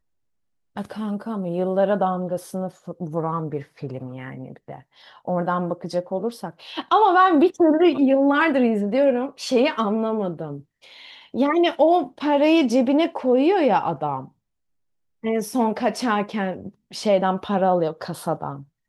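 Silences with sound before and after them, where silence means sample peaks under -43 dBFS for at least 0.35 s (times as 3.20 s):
14.28–15.23 s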